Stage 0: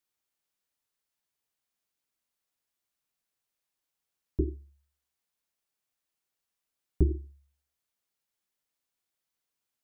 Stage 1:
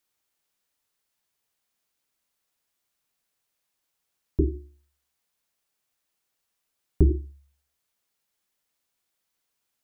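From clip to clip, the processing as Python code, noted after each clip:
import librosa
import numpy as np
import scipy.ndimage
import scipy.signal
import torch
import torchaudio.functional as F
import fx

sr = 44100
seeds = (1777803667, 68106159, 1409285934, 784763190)

y = fx.hum_notches(x, sr, base_hz=60, count=6)
y = F.gain(torch.from_numpy(y), 6.5).numpy()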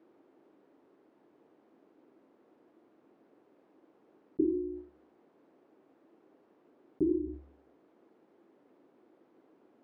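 y = fx.ladder_bandpass(x, sr, hz=360.0, resonance_pct=55)
y = fx.low_shelf(y, sr, hz=410.0, db=6.0)
y = fx.env_flatten(y, sr, amount_pct=70)
y = F.gain(torch.from_numpy(y), -3.0).numpy()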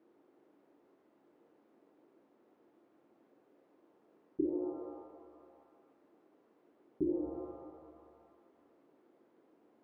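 y = fx.rev_shimmer(x, sr, seeds[0], rt60_s=1.9, semitones=7, shimmer_db=-8, drr_db=5.0)
y = F.gain(torch.from_numpy(y), -5.0).numpy()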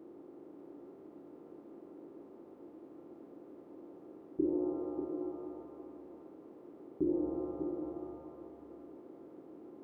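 y = fx.bin_compress(x, sr, power=0.6)
y = y + 10.0 ** (-7.5 / 20.0) * np.pad(y, (int(590 * sr / 1000.0), 0))[:len(y)]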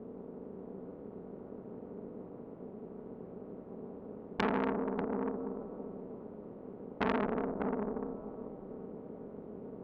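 y = x * np.sin(2.0 * np.pi * 100.0 * np.arange(len(x)) / sr)
y = fx.air_absorb(y, sr, metres=430.0)
y = fx.transformer_sat(y, sr, knee_hz=2000.0)
y = F.gain(torch.from_numpy(y), 10.0).numpy()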